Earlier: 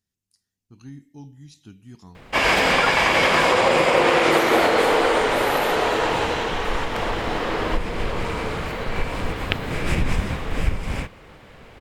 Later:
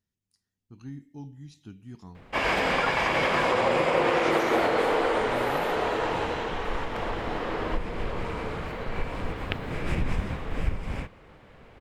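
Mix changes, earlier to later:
background −5.5 dB
master: add high-shelf EQ 3,300 Hz −8.5 dB

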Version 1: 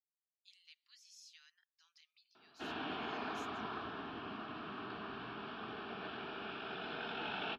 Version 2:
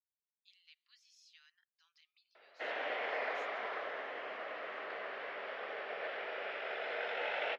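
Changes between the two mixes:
background: remove phaser with its sweep stopped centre 2,000 Hz, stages 6
master: add three-way crossover with the lows and the highs turned down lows −24 dB, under 520 Hz, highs −13 dB, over 4,600 Hz

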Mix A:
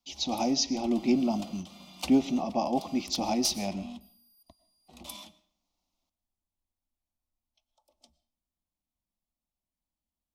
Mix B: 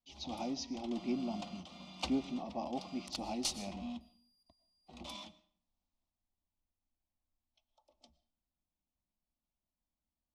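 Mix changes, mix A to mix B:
speech −11.0 dB
second sound: add high-shelf EQ 4,800 Hz +8.5 dB
master: add high-frequency loss of the air 94 metres

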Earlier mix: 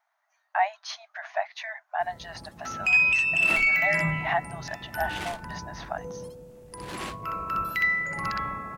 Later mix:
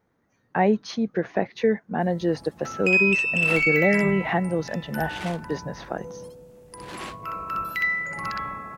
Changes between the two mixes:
speech: remove linear-phase brick-wall high-pass 600 Hz
second sound: add high-shelf EQ 9,600 Hz −7.5 dB
master: add low-shelf EQ 140 Hz −4.5 dB

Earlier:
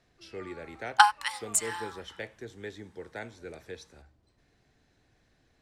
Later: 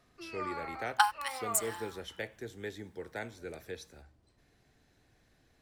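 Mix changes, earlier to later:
first sound +11.5 dB
second sound −7.0 dB
master: remove low-pass filter 8,300 Hz 12 dB per octave

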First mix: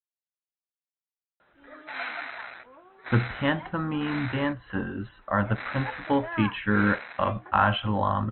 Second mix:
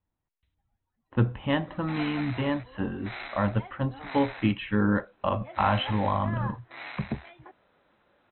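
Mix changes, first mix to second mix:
speech: entry −1.95 s
master: add parametric band 1,500 Hz −8 dB 0.62 octaves

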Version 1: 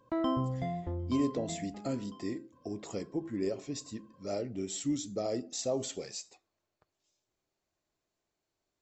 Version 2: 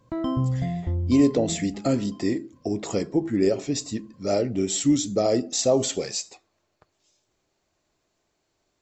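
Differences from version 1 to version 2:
speech +12.0 dB
background: add bass and treble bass +12 dB, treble +4 dB

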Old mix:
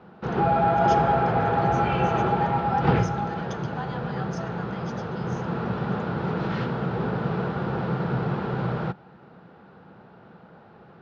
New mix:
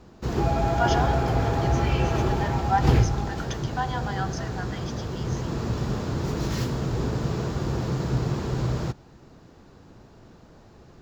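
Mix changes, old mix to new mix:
speech +7.5 dB
background: remove loudspeaker in its box 140–3,400 Hz, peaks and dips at 180 Hz +8 dB, 290 Hz −5 dB, 490 Hz +4 dB, 810 Hz +7 dB, 1,400 Hz +9 dB

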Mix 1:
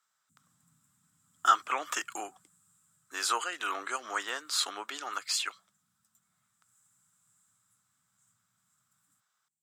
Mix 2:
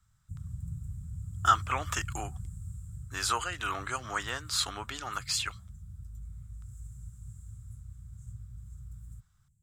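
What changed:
background +6.0 dB
master: remove high-pass filter 290 Hz 24 dB per octave

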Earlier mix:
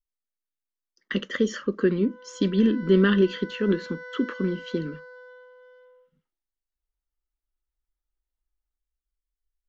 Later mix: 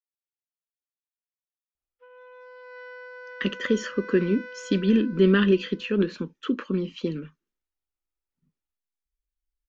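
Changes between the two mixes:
speech: entry +2.30 s
master: remove notch filter 2,500 Hz, Q 5.6

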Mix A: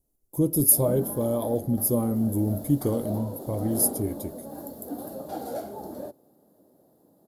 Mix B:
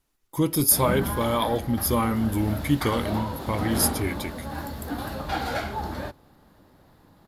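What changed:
background: remove high-pass filter 260 Hz 12 dB per octave
master: remove drawn EQ curve 640 Hz 0 dB, 940 Hz −14 dB, 2,300 Hz −26 dB, 11,000 Hz +2 dB

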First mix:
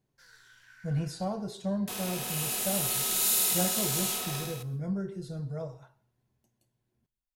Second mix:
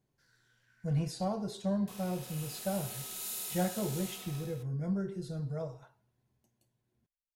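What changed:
background −12.0 dB
reverb: off

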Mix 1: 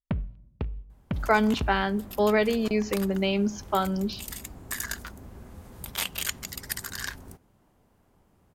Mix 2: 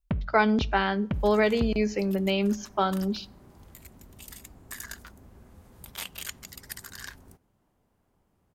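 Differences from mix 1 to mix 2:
speech: entry −0.95 s
second sound −7.0 dB

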